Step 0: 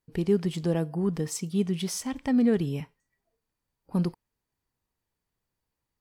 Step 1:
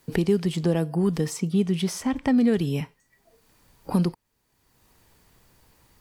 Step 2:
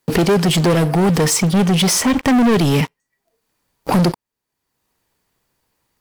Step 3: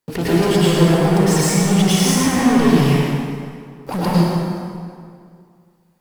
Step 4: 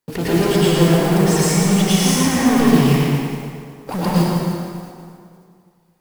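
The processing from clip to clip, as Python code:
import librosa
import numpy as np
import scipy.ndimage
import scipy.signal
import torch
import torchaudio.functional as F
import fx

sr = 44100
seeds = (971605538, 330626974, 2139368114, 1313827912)

y1 = fx.band_squash(x, sr, depth_pct=70)
y1 = y1 * librosa.db_to_amplitude(4.0)
y2 = fx.low_shelf(y1, sr, hz=140.0, db=-9.5)
y2 = fx.leveller(y2, sr, passes=5)
y2 = y2 * librosa.db_to_amplitude(1.5)
y3 = fx.rev_plate(y2, sr, seeds[0], rt60_s=2.2, hf_ratio=0.7, predelay_ms=90, drr_db=-8.5)
y3 = y3 * librosa.db_to_amplitude(-9.5)
y4 = fx.mod_noise(y3, sr, seeds[1], snr_db=22)
y4 = fx.echo_feedback(y4, sr, ms=114, feedback_pct=55, wet_db=-8)
y4 = y4 * librosa.db_to_amplitude(-1.0)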